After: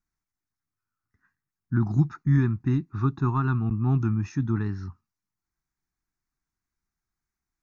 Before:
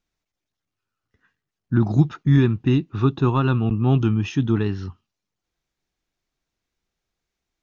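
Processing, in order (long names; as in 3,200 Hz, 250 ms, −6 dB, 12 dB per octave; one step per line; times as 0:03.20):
phaser with its sweep stopped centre 1,300 Hz, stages 4
level −3.5 dB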